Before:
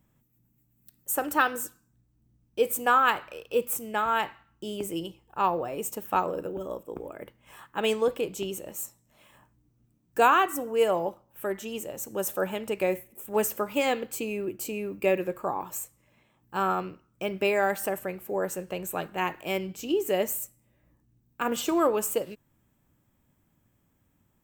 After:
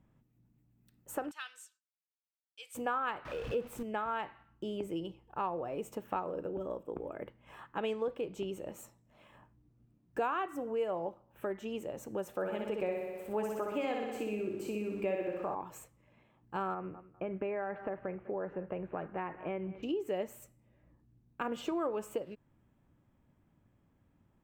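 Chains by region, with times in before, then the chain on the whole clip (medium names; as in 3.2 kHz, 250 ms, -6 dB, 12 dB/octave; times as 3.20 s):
1.31–2.75 s: expander -59 dBFS + Butterworth band-pass 5.9 kHz, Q 0.82
3.25–3.83 s: jump at every zero crossing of -35 dBFS + bass shelf 170 Hz +7 dB
12.33–15.55 s: small samples zeroed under -49.5 dBFS + flutter echo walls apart 10.6 m, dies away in 0.92 s
16.74–19.83 s: low-pass 2.2 kHz 24 dB/octave + feedback delay 200 ms, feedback 22%, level -22 dB + compression 2:1, threshold -29 dBFS
whole clip: FFT filter 690 Hz 0 dB, 1.7 kHz -3 dB, 2.8 kHz -5 dB, 12 kHz -20 dB; compression 2.5:1, threshold -36 dBFS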